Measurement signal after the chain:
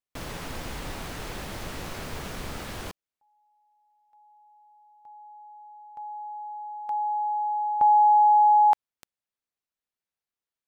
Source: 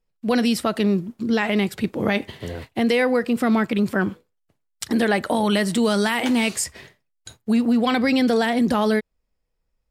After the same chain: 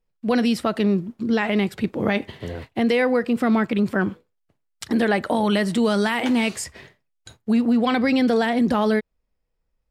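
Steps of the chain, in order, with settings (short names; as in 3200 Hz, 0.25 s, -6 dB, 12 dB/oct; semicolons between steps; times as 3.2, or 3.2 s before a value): high shelf 5200 Hz -8.5 dB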